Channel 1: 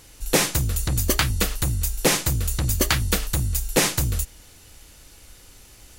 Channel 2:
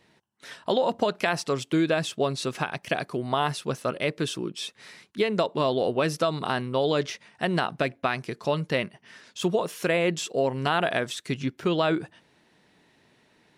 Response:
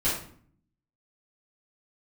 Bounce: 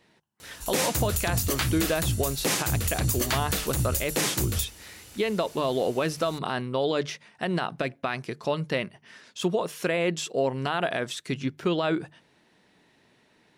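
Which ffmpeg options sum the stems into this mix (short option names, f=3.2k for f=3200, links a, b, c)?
-filter_complex "[0:a]highpass=78,adelay=400,volume=1dB[a];[1:a]volume=-0.5dB[b];[a][b]amix=inputs=2:normalize=0,bandreject=f=50:t=h:w=6,bandreject=f=100:t=h:w=6,bandreject=f=150:t=h:w=6,alimiter=limit=-15dB:level=0:latency=1:release=63"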